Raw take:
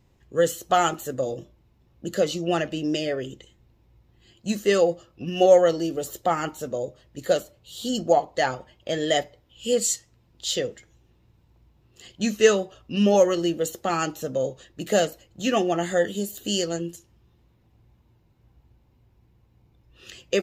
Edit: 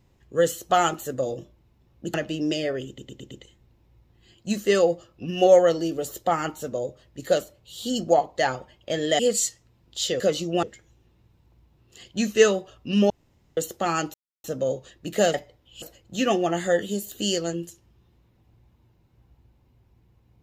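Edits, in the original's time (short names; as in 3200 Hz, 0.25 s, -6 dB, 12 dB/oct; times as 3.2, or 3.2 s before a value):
2.14–2.57 move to 10.67
3.3 stutter 0.11 s, 5 plays
9.18–9.66 move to 15.08
13.14–13.61 room tone
14.18 insert silence 0.30 s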